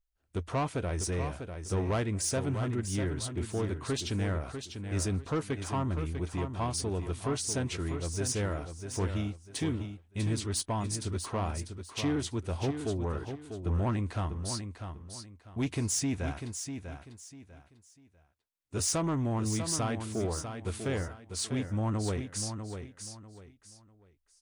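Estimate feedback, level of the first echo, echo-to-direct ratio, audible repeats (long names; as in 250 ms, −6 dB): 28%, −8.0 dB, −7.5 dB, 3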